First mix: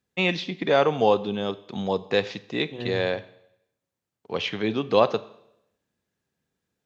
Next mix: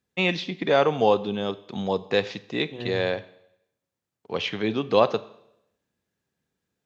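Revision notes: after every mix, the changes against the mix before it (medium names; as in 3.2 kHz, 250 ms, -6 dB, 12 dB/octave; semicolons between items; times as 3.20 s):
second voice: send -9.0 dB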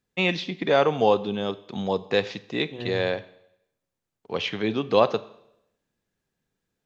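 second voice: remove high-pass 63 Hz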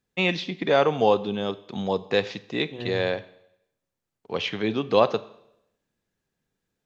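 no change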